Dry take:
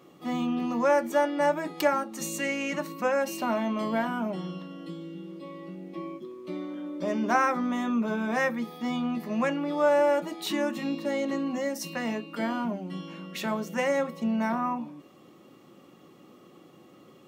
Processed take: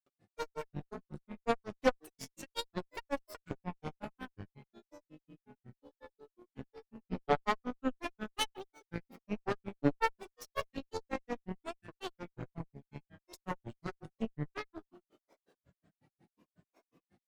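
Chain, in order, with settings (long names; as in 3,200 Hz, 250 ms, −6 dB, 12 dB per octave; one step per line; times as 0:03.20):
tape wow and flutter 20 cents
granular cloud 102 ms, grains 5.5 per second, pitch spread up and down by 12 semitones
harmonic generator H 5 −32 dB, 6 −17 dB, 7 −19 dB, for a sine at −12 dBFS
level −2.5 dB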